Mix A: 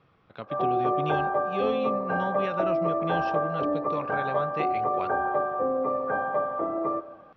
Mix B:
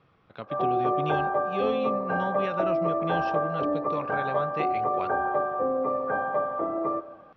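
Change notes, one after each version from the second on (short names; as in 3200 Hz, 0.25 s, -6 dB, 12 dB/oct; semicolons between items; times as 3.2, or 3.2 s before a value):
none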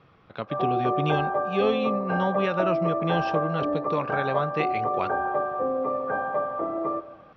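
speech +6.0 dB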